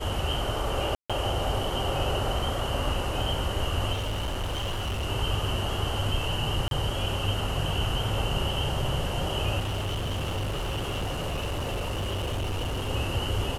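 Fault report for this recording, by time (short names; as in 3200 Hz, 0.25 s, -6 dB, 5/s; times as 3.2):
0.95–1.1 gap 0.146 s
3.92–5.06 clipped -26.5 dBFS
6.68–6.71 gap 32 ms
9.59–12.9 clipped -26.5 dBFS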